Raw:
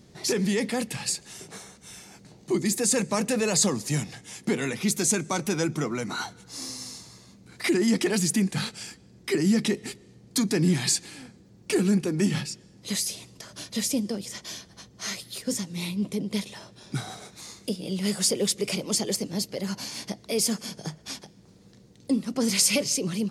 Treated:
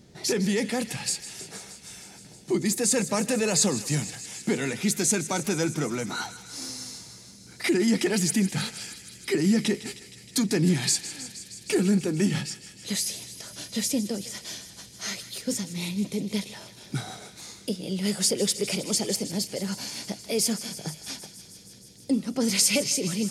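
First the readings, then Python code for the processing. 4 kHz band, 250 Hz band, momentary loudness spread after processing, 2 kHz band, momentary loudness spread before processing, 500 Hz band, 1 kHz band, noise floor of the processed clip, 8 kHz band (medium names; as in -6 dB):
+0.5 dB, 0.0 dB, 16 LU, 0.0 dB, 17 LU, 0.0 dB, -0.5 dB, -49 dBFS, +0.5 dB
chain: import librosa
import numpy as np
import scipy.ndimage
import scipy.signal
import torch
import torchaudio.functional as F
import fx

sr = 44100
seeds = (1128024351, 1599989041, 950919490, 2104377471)

p1 = fx.notch(x, sr, hz=1100.0, q=9.4)
y = p1 + fx.echo_thinned(p1, sr, ms=157, feedback_pct=83, hz=1200.0, wet_db=-13.5, dry=0)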